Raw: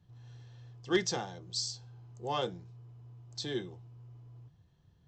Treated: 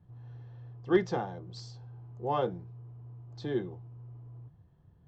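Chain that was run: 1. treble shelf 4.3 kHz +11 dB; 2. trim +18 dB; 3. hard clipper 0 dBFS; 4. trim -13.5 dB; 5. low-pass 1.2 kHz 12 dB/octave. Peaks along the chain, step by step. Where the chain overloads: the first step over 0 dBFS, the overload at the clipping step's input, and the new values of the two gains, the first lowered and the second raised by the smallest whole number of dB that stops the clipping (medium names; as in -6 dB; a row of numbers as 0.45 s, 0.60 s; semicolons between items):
-13.5 dBFS, +4.5 dBFS, 0.0 dBFS, -13.5 dBFS, -14.0 dBFS; step 2, 4.5 dB; step 2 +13 dB, step 4 -8.5 dB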